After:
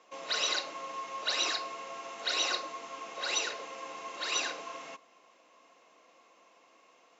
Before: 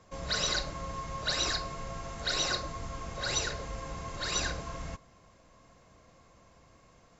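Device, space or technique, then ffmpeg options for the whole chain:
phone speaker on a table: -af "highpass=frequency=330:width=0.5412,highpass=frequency=330:width=1.3066,equalizer=frequency=390:width_type=q:width=4:gain=-4,equalizer=frequency=580:width_type=q:width=4:gain=-4,equalizer=frequency=1600:width_type=q:width=4:gain=-5,equalizer=frequency=2700:width_type=q:width=4:gain=6,equalizer=frequency=4700:width_type=q:width=4:gain=-5,lowpass=frequency=6500:width=0.5412,lowpass=frequency=6500:width=1.3066,volume=1.5dB"

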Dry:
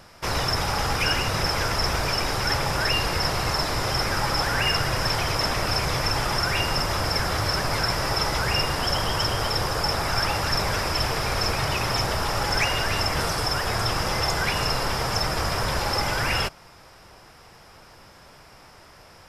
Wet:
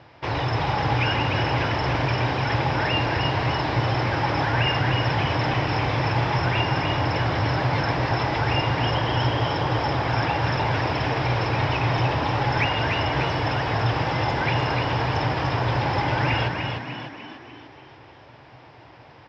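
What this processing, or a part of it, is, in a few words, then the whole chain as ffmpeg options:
frequency-shifting delay pedal into a guitar cabinet: -filter_complex "[0:a]asplit=7[link_01][link_02][link_03][link_04][link_05][link_06][link_07];[link_02]adelay=298,afreqshift=56,volume=-5dB[link_08];[link_03]adelay=596,afreqshift=112,volume=-10.8dB[link_09];[link_04]adelay=894,afreqshift=168,volume=-16.7dB[link_10];[link_05]adelay=1192,afreqshift=224,volume=-22.5dB[link_11];[link_06]adelay=1490,afreqshift=280,volume=-28.4dB[link_12];[link_07]adelay=1788,afreqshift=336,volume=-34.2dB[link_13];[link_01][link_08][link_09][link_10][link_11][link_12][link_13]amix=inputs=7:normalize=0,highpass=78,equalizer=frequency=120:width_type=q:width=4:gain=10,equalizer=frequency=200:width_type=q:width=4:gain=-9,equalizer=frequency=300:width_type=q:width=4:gain=7,equalizer=frequency=860:width_type=q:width=4:gain=4,equalizer=frequency=1300:width_type=q:width=4:gain=-6,lowpass=frequency=3700:width=0.5412,lowpass=frequency=3700:width=1.3066"

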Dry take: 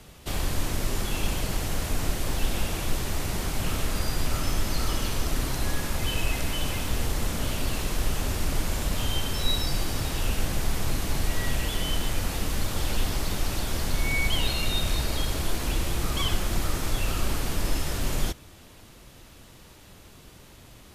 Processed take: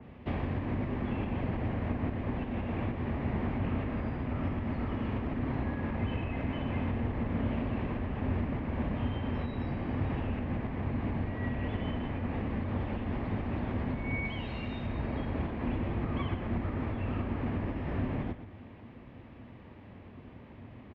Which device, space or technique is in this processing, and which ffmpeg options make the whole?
bass amplifier: -filter_complex "[0:a]asettb=1/sr,asplit=3[link_01][link_02][link_03];[link_01]atrim=end=14.254[link_04];[link_02]atrim=start=14.25:end=14.87,asetpts=PTS-STARTPTS,afade=type=in:duration=0.004:curve=qsin,afade=type=out:start_time=0.616:duration=0.004:curve=qsin,aemphasis=mode=production:type=75kf[link_05];[link_03]atrim=start=14.866[link_06];[link_04][link_05]acrossfade=duration=0.004:curve1=hsin:curve2=qsin[link_07];[link_07][link_06]acrossfade=duration=0.004:curve1=qsin:curve2=hsin,acompressor=threshold=-25dB:ratio=6,highpass=64,equalizer=frequency=98:width_type=q:width=4:gain=6,equalizer=frequency=240:width_type=q:width=4:gain=10,equalizer=frequency=1400:width_type=q:width=4:gain=-8,lowpass=frequency=2200:width=0.5412,lowpass=frequency=2200:width=1.3066,aecho=1:1:119:0.266,adynamicequalizer=threshold=0.00141:dfrequency=2900:dqfactor=0.7:tfrequency=2900:tqfactor=0.7:attack=5:release=100:ratio=0.375:range=2.5:mode=cutabove:tftype=highshelf"

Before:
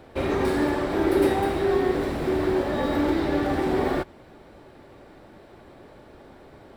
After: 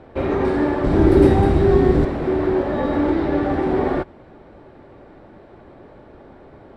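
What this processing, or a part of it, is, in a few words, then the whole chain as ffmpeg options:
through cloth: -filter_complex "[0:a]asettb=1/sr,asplit=3[link_01][link_02][link_03];[link_01]atrim=end=0.844[link_04];[link_02]atrim=start=0.84:end=2.05,asetpts=PTS-STARTPTS,afade=type=in:duration=0.004:curve=qsin,afade=type=out:start_time=1.206:duration=0.004:curve=qsin,bass=frequency=250:gain=13,treble=frequency=4000:gain=9[link_05];[link_03]atrim=start=2.046[link_06];[link_04][link_05]acrossfade=duration=0.004:curve1=hsin:curve2=qsin[link_07];[link_07][link_06]acrossfade=duration=0.004:curve1=qsin:curve2=hsin,lowpass=9100,highshelf=frequency=3300:gain=-16,volume=4.5dB"

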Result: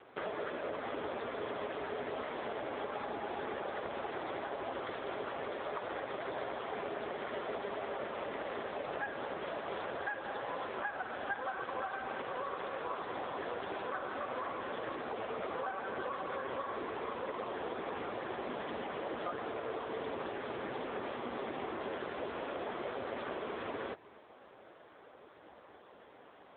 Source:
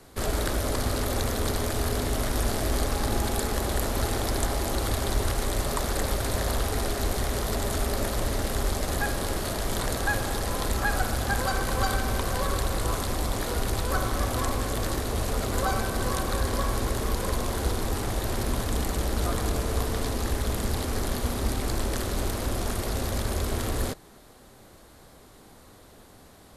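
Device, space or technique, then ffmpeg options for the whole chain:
voicemail: -af "highpass=380,lowpass=3000,acompressor=threshold=-35dB:ratio=8,volume=2.5dB" -ar 8000 -c:a libopencore_amrnb -b:a 5900

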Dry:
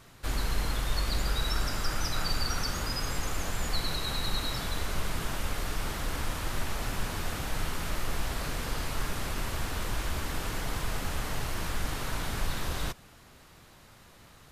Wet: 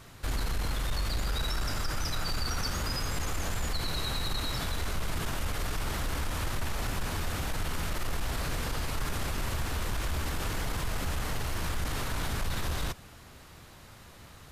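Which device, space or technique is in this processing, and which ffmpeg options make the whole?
soft clipper into limiter: -af "equalizer=frequency=78:width=1.5:gain=4.5,asoftclip=type=tanh:threshold=-21dB,alimiter=level_in=3dB:limit=-24dB:level=0:latency=1:release=36,volume=-3dB,volume=3dB"

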